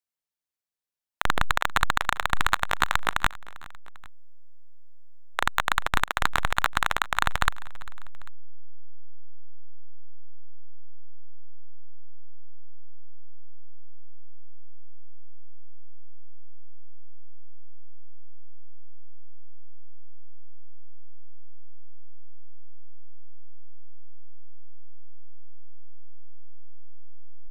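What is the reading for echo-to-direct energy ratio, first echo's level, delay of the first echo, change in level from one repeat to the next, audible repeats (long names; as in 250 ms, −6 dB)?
−20.0 dB, −21.5 dB, 397 ms, −4.5 dB, 2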